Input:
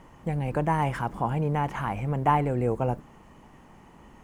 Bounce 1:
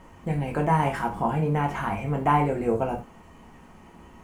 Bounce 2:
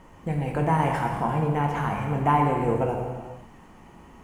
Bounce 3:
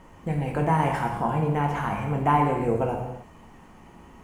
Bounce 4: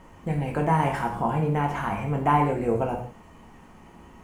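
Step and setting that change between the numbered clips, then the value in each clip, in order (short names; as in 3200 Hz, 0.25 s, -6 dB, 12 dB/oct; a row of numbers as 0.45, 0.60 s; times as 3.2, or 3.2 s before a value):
non-linear reverb, gate: 0.12, 0.53, 0.34, 0.2 s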